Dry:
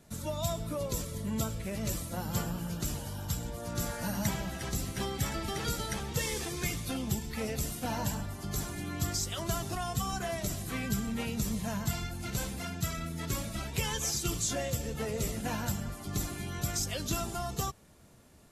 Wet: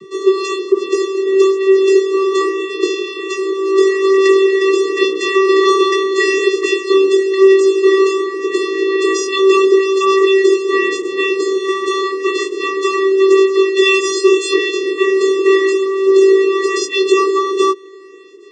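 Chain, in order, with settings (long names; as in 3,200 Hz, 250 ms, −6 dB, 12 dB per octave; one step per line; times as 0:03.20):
Bessel low-pass filter 4,000 Hz, order 2
flat-topped bell 630 Hz −16 dB
hollow resonant body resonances 240/400/3,000 Hz, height 11 dB, ringing for 35 ms
channel vocoder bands 16, square 386 Hz
chorus effect 0.17 Hz, delay 19 ms, depth 2.9 ms
boost into a limiter +25.5 dB
level −1 dB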